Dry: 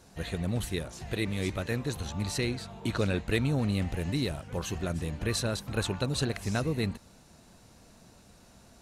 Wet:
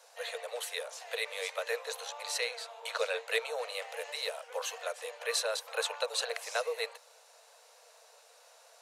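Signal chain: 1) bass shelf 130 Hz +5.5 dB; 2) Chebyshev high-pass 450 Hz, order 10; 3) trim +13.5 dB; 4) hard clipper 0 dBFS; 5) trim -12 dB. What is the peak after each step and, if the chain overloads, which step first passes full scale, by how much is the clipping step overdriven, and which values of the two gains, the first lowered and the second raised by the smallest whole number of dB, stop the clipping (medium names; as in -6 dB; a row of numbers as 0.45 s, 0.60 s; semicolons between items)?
-13.0 dBFS, -16.5 dBFS, -3.0 dBFS, -3.0 dBFS, -15.0 dBFS; nothing clips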